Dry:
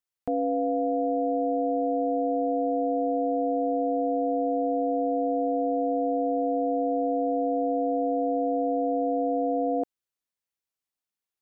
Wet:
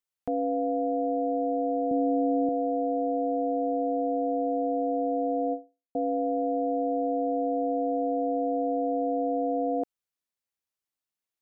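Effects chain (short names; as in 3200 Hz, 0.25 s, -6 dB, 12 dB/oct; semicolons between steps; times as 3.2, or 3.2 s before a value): 1.91–2.49 tone controls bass +12 dB, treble +5 dB; 5.53–5.95 fade out exponential; gain -1.5 dB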